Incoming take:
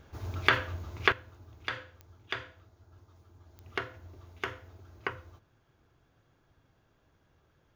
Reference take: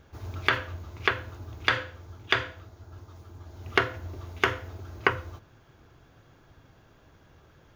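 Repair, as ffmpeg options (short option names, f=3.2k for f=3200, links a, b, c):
-af "adeclick=t=4,asetnsamples=n=441:p=0,asendcmd='1.12 volume volume 11.5dB',volume=0dB"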